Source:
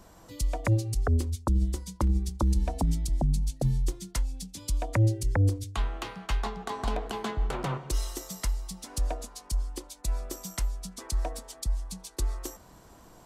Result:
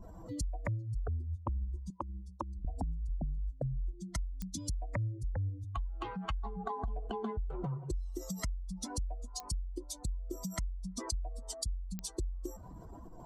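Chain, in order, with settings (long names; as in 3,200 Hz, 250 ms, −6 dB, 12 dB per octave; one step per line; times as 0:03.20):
expanding power law on the bin magnitudes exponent 2.1
0:01.90–0:02.65: high-pass filter 700 Hz 6 dB per octave
downward compressor 5 to 1, threshold −40 dBFS, peak gain reduction 18 dB
digital clicks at 0:04.42/0:09.40/0:11.99, −30 dBFS
level +5 dB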